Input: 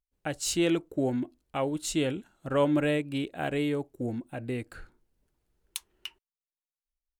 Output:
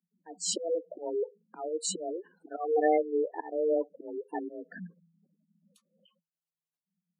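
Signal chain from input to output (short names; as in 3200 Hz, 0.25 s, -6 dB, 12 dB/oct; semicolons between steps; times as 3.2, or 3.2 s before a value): auto swell 0.301 s; spectral gate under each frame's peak -10 dB strong; frequency shift +160 Hz; gain +3.5 dB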